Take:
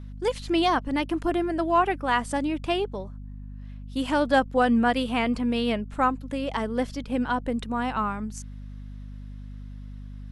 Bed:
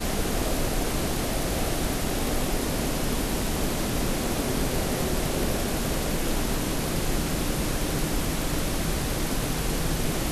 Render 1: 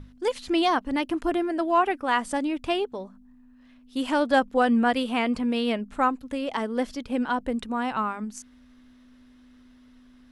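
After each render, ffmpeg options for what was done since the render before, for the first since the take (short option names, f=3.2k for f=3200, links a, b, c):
-af "bandreject=f=50:t=h:w=6,bandreject=f=100:t=h:w=6,bandreject=f=150:t=h:w=6,bandreject=f=200:t=h:w=6"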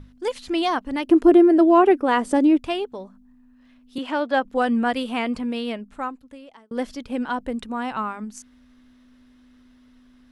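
-filter_complex "[0:a]asplit=3[a][b][c];[a]afade=t=out:st=1.07:d=0.02[d];[b]equalizer=f=370:t=o:w=1.4:g=14,afade=t=in:st=1.07:d=0.02,afade=t=out:st=2.58:d=0.02[e];[c]afade=t=in:st=2.58:d=0.02[f];[d][e][f]amix=inputs=3:normalize=0,asettb=1/sr,asplit=3[g][h][i];[g]atrim=end=3.984[j];[h]atrim=start=3.98:end=4.45,asetpts=PTS-STARTPTS,afade=t=in:d=0.004:c=qsin,afade=t=out:st=0.466:d=0.004:c=qsin,acrossover=split=230 4600:gain=0.178 1 0.2[k][l][m];[k][l][m]amix=inputs=3:normalize=0[n];[i]atrim=start=4.446[o];[j][n]acrossfade=d=0.004:c1=hsin:c2=qsin[p];[p][o]acrossfade=d=0.004:c1=qsin:c2=hsin,asplit=2[q][r];[q]atrim=end=6.71,asetpts=PTS-STARTPTS,afade=t=out:st=5.32:d=1.39[s];[r]atrim=start=6.71,asetpts=PTS-STARTPTS,afade=t=in:d=0.004:c=hsin[t];[s][t]concat=n=2:v=0:a=1"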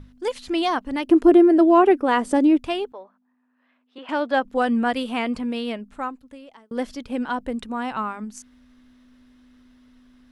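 -filter_complex "[0:a]asettb=1/sr,asplit=3[a][b][c];[a]atrim=end=2.924[d];[b]atrim=start=2.92:end=4.09,asetpts=PTS-STARTPTS,afade=t=in:d=0.004:c=qsin,afade=t=out:st=1.166:d=0.004:c=qsin,highpass=580,lowpass=2.1k[e];[c]atrim=start=4.086[f];[d][e]acrossfade=d=0.004:c1=hsin:c2=qsin[g];[g][f]acrossfade=d=0.004:c1=qsin:c2=hsin"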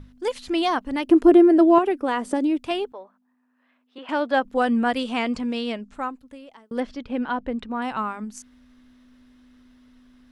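-filter_complex "[0:a]asettb=1/sr,asplit=3[a][b][c];[a]atrim=end=1.784[d];[b]atrim=start=1.78:end=2.71,asetpts=PTS-STARTPTS,afade=t=in:d=0.004:c=qsin,afade=t=out:st=0.926:d=0.004:c=qsin,acrossover=split=110|2800[e][f][g];[e]acompressor=threshold=-57dB:ratio=4[h];[f]acompressor=threshold=-20dB:ratio=4[i];[g]acompressor=threshold=-40dB:ratio=4[j];[h][i][j]amix=inputs=3:normalize=0[k];[c]atrim=start=2.706[l];[d][k]acrossfade=d=0.004:c1=hsin:c2=qsin[m];[m][l]acrossfade=d=0.004:c1=qsin:c2=hsin,asettb=1/sr,asplit=3[n][o][p];[n]atrim=end=4.994[q];[o]atrim=start=4.99:end=5.95,asetpts=PTS-STARTPTS,afade=t=in:d=0.004:c=qsin,afade=t=out:st=0.956:d=0.004:c=qsin,lowpass=f=6.8k:t=q:w=1.9[r];[p]atrim=start=5.946[s];[q][r]acrossfade=d=0.004:c1=hsin:c2=qsin[t];[t][s]acrossfade=d=0.004:c1=qsin:c2=hsin,asettb=1/sr,asplit=3[u][v][w];[u]atrim=end=6.804[x];[v]atrim=start=6.8:end=7.82,asetpts=PTS-STARTPTS,afade=t=in:d=0.004:c=qsin,afade=t=out:st=1.016:d=0.004:c=qsin,lowpass=3.8k[y];[w]atrim=start=7.816[z];[x][y]acrossfade=d=0.004:c1=hsin:c2=qsin[aa];[aa][z]acrossfade=d=0.004:c1=qsin:c2=hsin"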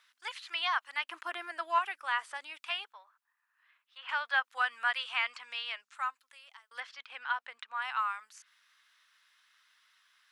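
-filter_complex "[0:a]highpass=f=1.2k:w=0.5412,highpass=f=1.2k:w=1.3066,acrossover=split=3700[a][b];[b]acompressor=threshold=-55dB:ratio=4:attack=1:release=60[c];[a][c]amix=inputs=2:normalize=0"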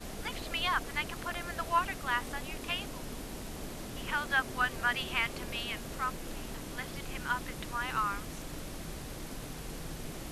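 -filter_complex "[1:a]volume=-15dB[a];[0:a][a]amix=inputs=2:normalize=0"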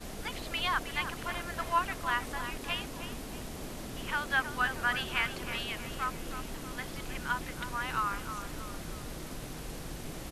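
-filter_complex "[0:a]asplit=2[a][b];[b]adelay=316,lowpass=f=3.8k:p=1,volume=-9.5dB,asplit=2[c][d];[d]adelay=316,lowpass=f=3.8k:p=1,volume=0.48,asplit=2[e][f];[f]adelay=316,lowpass=f=3.8k:p=1,volume=0.48,asplit=2[g][h];[h]adelay=316,lowpass=f=3.8k:p=1,volume=0.48,asplit=2[i][j];[j]adelay=316,lowpass=f=3.8k:p=1,volume=0.48[k];[a][c][e][g][i][k]amix=inputs=6:normalize=0"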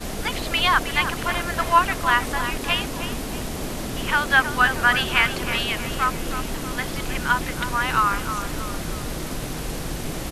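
-af "volume=12dB"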